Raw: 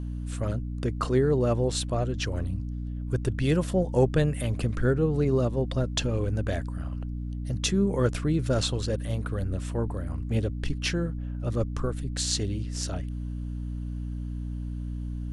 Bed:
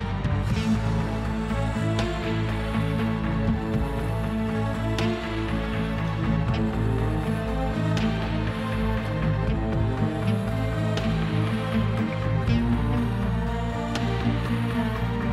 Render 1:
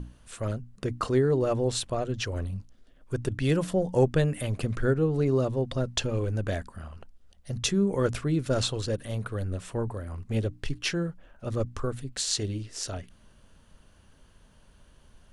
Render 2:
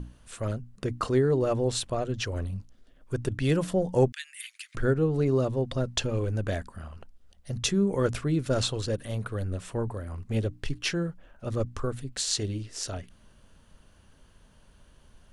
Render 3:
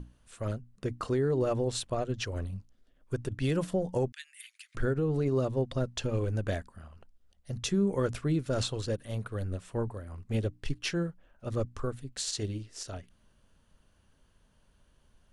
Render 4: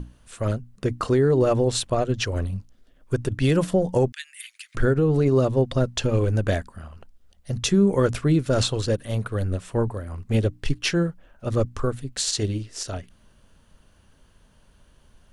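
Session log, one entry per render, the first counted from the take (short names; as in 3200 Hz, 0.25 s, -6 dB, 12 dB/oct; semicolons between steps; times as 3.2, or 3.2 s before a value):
notches 60/120/180/240/300 Hz
4.12–4.75 steep high-pass 1800 Hz
limiter -19.5 dBFS, peak gain reduction 9.5 dB; upward expander 1.5:1, over -41 dBFS
gain +9 dB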